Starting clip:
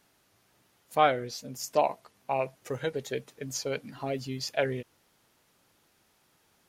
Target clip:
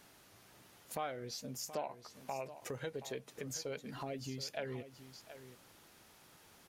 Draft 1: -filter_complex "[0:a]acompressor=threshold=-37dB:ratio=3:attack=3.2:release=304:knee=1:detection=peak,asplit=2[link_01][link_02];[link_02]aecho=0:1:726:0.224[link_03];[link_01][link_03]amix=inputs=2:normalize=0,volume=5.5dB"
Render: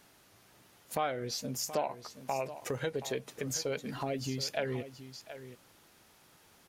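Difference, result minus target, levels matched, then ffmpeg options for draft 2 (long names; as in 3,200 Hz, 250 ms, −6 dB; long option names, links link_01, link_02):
downward compressor: peak gain reduction −7.5 dB
-filter_complex "[0:a]acompressor=threshold=-48dB:ratio=3:attack=3.2:release=304:knee=1:detection=peak,asplit=2[link_01][link_02];[link_02]aecho=0:1:726:0.224[link_03];[link_01][link_03]amix=inputs=2:normalize=0,volume=5.5dB"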